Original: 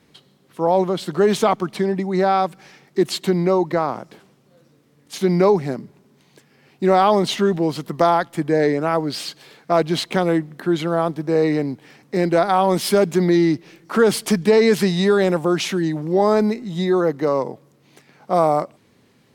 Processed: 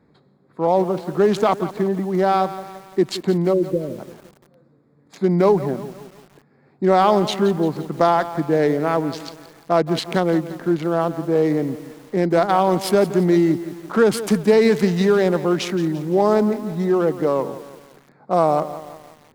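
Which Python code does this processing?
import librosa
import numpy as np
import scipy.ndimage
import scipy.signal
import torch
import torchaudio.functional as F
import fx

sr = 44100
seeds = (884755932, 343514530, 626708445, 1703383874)

y = fx.wiener(x, sr, points=15)
y = fx.brickwall_bandstop(y, sr, low_hz=630.0, high_hz=9900.0, at=(3.52, 3.98), fade=0.02)
y = fx.echo_crushed(y, sr, ms=172, feedback_pct=55, bits=6, wet_db=-13.5)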